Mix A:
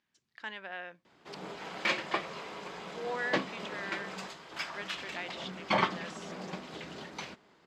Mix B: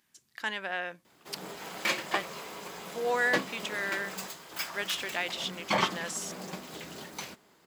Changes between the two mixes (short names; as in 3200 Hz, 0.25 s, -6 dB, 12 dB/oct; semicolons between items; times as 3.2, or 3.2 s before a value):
speech +7.5 dB; master: remove LPF 4300 Hz 12 dB/oct